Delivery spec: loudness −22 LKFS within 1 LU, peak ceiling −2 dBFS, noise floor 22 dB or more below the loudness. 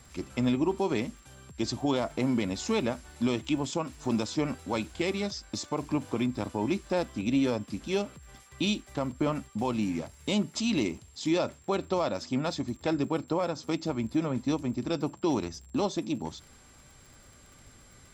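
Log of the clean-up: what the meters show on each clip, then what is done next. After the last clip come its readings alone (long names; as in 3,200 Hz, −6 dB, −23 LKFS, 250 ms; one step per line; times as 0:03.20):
crackle rate 54 per second; interfering tone 7,500 Hz; level of the tone −59 dBFS; integrated loudness −31.0 LKFS; sample peak −17.5 dBFS; target loudness −22.0 LKFS
→ click removal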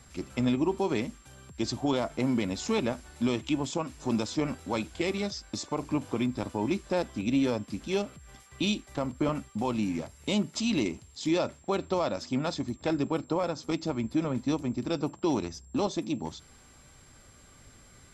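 crackle rate 0 per second; interfering tone 7,500 Hz; level of the tone −59 dBFS
→ notch filter 7,500 Hz, Q 30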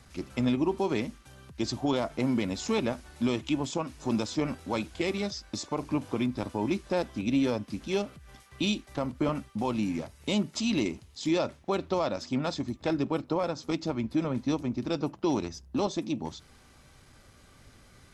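interfering tone none found; integrated loudness −31.0 LKFS; sample peak −17.5 dBFS; target loudness −22.0 LKFS
→ level +9 dB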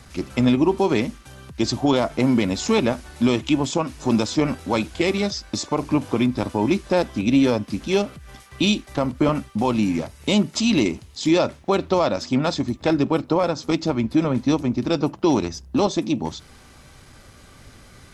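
integrated loudness −22.0 LKFS; sample peak −8.5 dBFS; background noise floor −48 dBFS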